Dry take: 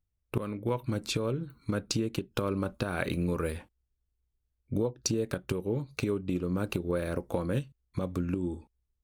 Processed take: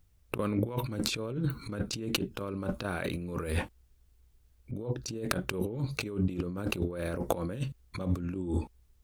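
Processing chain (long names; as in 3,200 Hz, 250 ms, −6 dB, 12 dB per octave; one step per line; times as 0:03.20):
compressor whose output falls as the input rises −41 dBFS, ratio −1
level +7.5 dB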